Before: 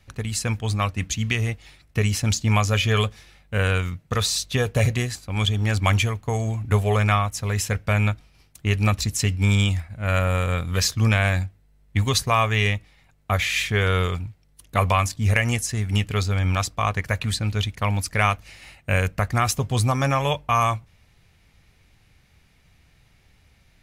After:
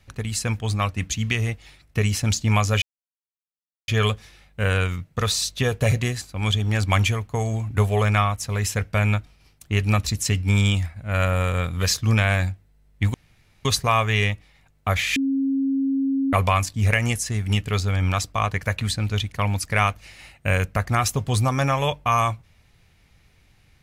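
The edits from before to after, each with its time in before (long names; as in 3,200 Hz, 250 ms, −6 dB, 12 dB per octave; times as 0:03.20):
0:02.82: splice in silence 1.06 s
0:12.08: splice in room tone 0.51 s
0:13.59–0:14.76: beep over 271 Hz −19 dBFS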